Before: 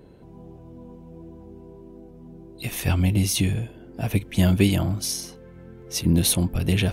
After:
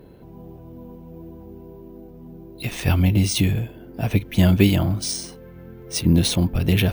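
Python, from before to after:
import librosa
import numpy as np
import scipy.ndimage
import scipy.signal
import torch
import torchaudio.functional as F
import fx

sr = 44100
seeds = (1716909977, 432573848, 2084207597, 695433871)

y = np.repeat(scipy.signal.resample_poly(x, 1, 3), 3)[:len(x)]
y = y * 10.0 ** (3.0 / 20.0)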